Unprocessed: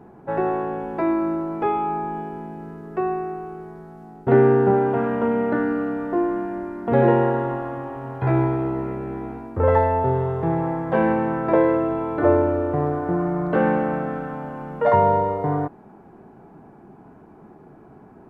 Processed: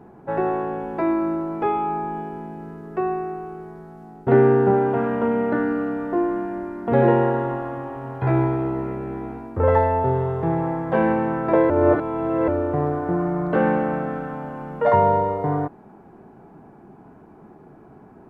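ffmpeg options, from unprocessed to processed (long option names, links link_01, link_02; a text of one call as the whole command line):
ffmpeg -i in.wav -filter_complex "[0:a]asplit=3[link_01][link_02][link_03];[link_01]atrim=end=11.702[link_04];[link_02]atrim=start=11.698:end=12.482,asetpts=PTS-STARTPTS,areverse[link_05];[link_03]atrim=start=12.478[link_06];[link_04][link_05]acrossfade=duration=0.004:curve1=hsin:curve2=hsin[link_07];[link_07][link_06]acrossfade=duration=0.004:curve1=hsin:curve2=hsin" out.wav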